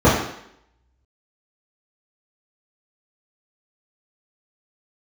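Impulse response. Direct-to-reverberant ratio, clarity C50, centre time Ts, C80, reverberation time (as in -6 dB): -12.0 dB, 3.5 dB, 47 ms, 6.5 dB, 0.70 s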